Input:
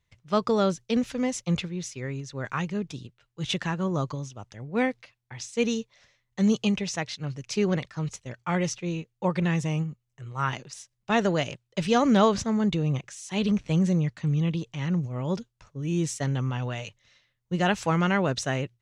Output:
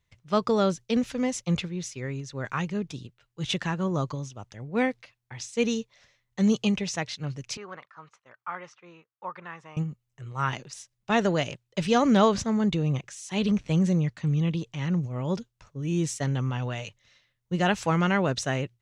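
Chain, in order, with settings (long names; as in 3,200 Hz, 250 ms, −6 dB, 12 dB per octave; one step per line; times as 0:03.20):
0:07.57–0:09.77: resonant band-pass 1,200 Hz, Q 2.7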